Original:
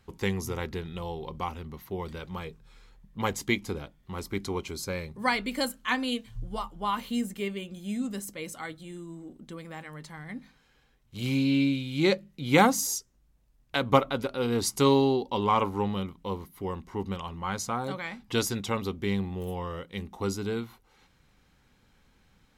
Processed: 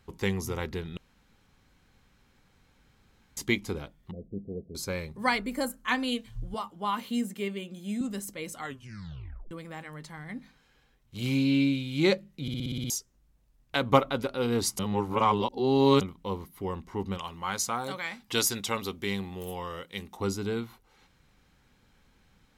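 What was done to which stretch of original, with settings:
0.97–3.37 s: room tone
4.11–4.75 s: rippled Chebyshev low-pass 690 Hz, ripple 9 dB
5.38–5.88 s: peaking EQ 3.3 kHz -11 dB 1.2 oct
6.54–8.01 s: Chebyshev high-pass 180 Hz
8.59 s: tape stop 0.92 s
12.42 s: stutter in place 0.06 s, 8 plays
14.79–16.01 s: reverse
17.18–20.17 s: tilt EQ +2 dB/octave

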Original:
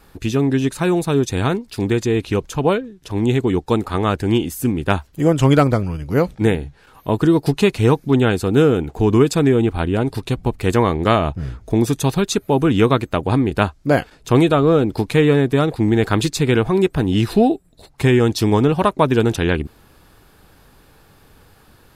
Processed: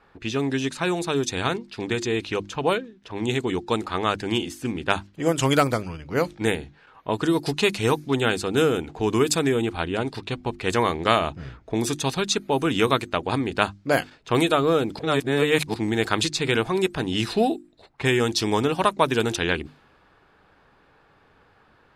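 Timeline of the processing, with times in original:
14.99–15.74 s: reverse
whole clip: level-controlled noise filter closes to 1.8 kHz, open at -9.5 dBFS; tilt EQ +2.5 dB/octave; hum notches 50/100/150/200/250/300/350 Hz; trim -3 dB

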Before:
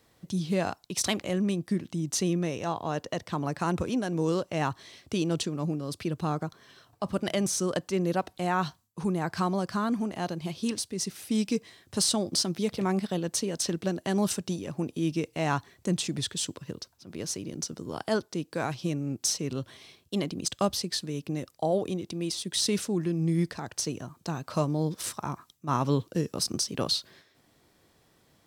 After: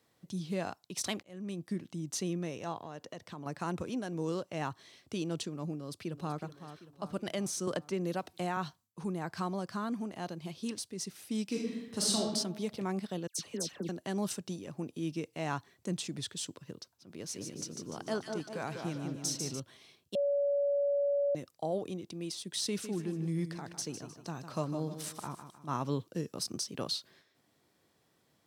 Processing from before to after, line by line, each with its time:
1.23–1.64 s: fade in
2.77–3.46 s: compression, threshold -32 dBFS
5.72–6.38 s: echo throw 380 ms, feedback 55%, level -11.5 dB
7.67–8.57 s: three bands compressed up and down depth 100%
11.47–12.20 s: reverb throw, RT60 1.1 s, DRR -2.5 dB
13.27–13.89 s: phase dispersion lows, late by 119 ms, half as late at 1.7 kHz
17.14–19.60 s: two-band feedback delay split 1.4 kHz, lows 197 ms, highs 147 ms, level -5 dB
20.15–21.35 s: bleep 568 Hz -19 dBFS
22.67–25.67 s: feedback delay 154 ms, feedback 40%, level -10 dB
whole clip: high-pass 100 Hz; trim -7.5 dB

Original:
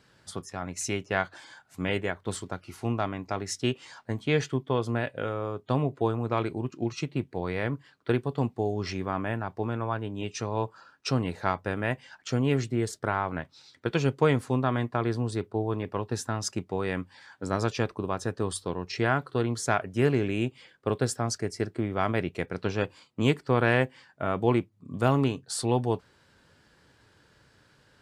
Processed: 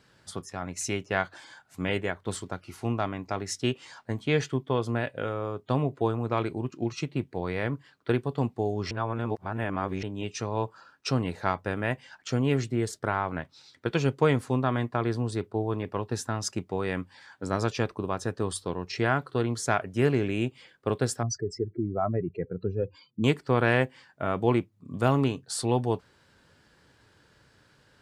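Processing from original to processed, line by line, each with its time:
8.91–10.03 s: reverse
21.23–23.24 s: spectral contrast enhancement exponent 2.6

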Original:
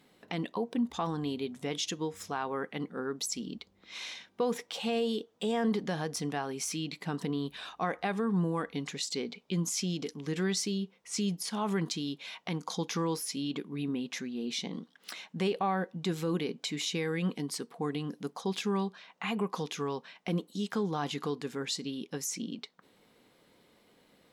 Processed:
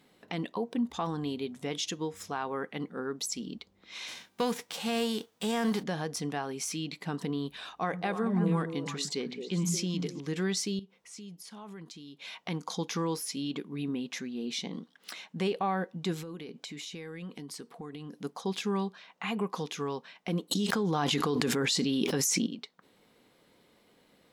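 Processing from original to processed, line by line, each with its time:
4.07–5.82 s: formants flattened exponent 0.6
7.71–10.20 s: repeats whose band climbs or falls 109 ms, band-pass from 160 Hz, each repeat 1.4 oct, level -1 dB
10.79–12.22 s: compression 2.5:1, threshold -50 dBFS
16.21–18.22 s: compression 8:1, threshold -38 dBFS
20.51–22.47 s: level flattener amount 100%

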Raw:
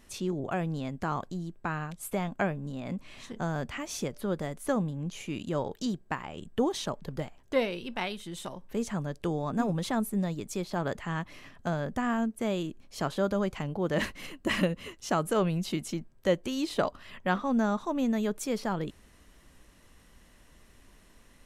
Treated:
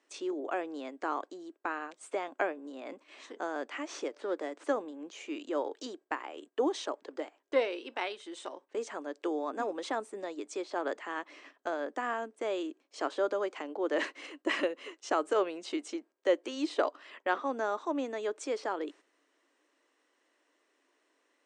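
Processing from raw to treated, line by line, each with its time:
3.86–4.64 s: sliding maximum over 3 samples
whole clip: Chebyshev band-pass 290–8700 Hz, order 5; gate -52 dBFS, range -9 dB; treble shelf 3.8 kHz -6.5 dB

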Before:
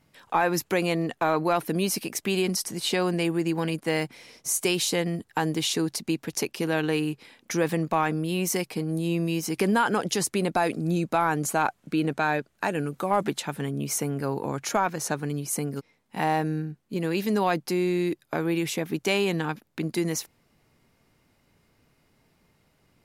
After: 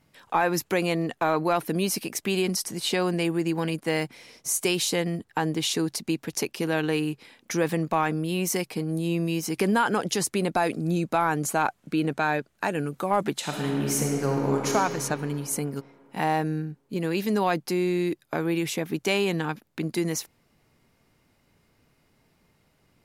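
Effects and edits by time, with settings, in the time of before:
5.18–5.63 s: treble shelf 4.8 kHz -6 dB
13.38–14.74 s: reverb throw, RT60 3 s, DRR -1 dB

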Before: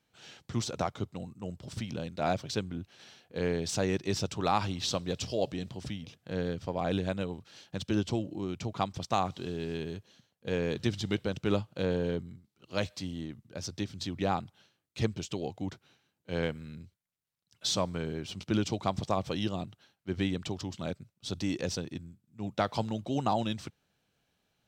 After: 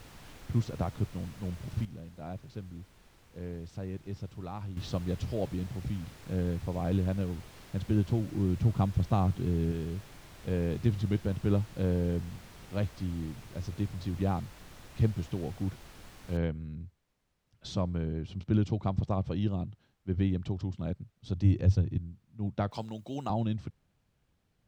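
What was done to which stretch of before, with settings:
1.85–4.77 s: gain -10 dB
8.33–9.72 s: bass shelf 350 Hz +7 dB
16.37 s: noise floor step -41 dB -69 dB
21.44–21.98 s: peaking EQ 100 Hz +13 dB 0.62 oct
22.71–23.30 s: RIAA curve recording
whole clip: RIAA curve playback; trim -6 dB

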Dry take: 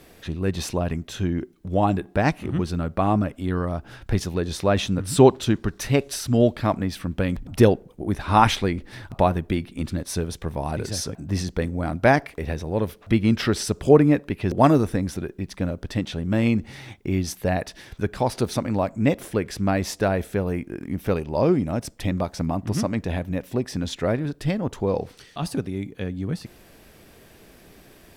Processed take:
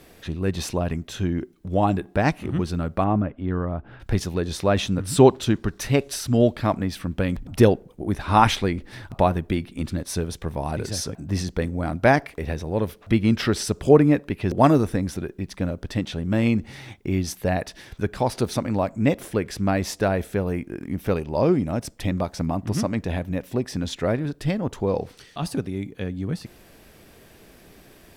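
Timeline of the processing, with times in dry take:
3.04–4.00 s: distance through air 460 m

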